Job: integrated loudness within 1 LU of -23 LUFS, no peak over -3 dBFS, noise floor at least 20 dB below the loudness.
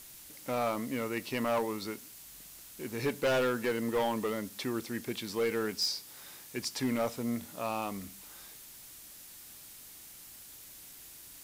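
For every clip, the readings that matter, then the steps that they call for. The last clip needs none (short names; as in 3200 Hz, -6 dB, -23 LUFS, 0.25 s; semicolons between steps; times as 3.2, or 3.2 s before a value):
clipped 1.3%; flat tops at -24.5 dBFS; noise floor -51 dBFS; noise floor target -54 dBFS; loudness -33.5 LUFS; peak -24.5 dBFS; loudness target -23.0 LUFS
-> clip repair -24.5 dBFS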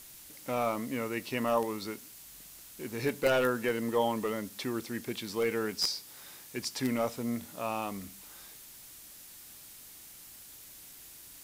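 clipped 0.0%; noise floor -51 dBFS; noise floor target -53 dBFS
-> noise print and reduce 6 dB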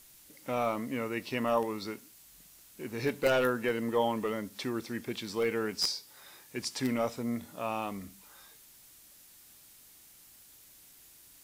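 noise floor -57 dBFS; loudness -32.5 LUFS; peak -15.5 dBFS; loudness target -23.0 LUFS
-> gain +9.5 dB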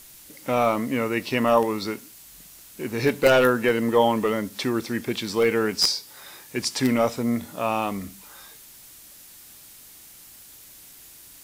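loudness -23.0 LUFS; peak -6.0 dBFS; noise floor -48 dBFS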